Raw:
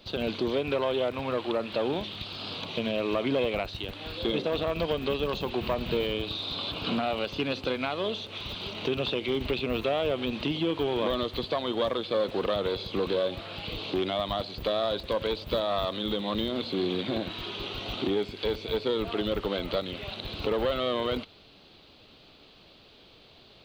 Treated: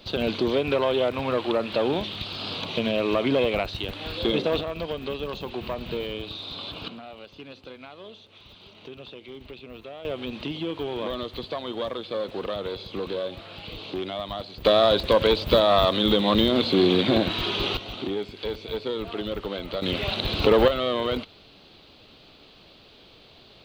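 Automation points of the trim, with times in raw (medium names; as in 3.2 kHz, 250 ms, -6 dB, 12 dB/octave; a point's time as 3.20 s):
+4.5 dB
from 4.61 s -2.5 dB
from 6.88 s -13 dB
from 10.05 s -2.5 dB
from 14.65 s +9.5 dB
from 17.77 s -1.5 dB
from 19.82 s +10 dB
from 20.68 s +3 dB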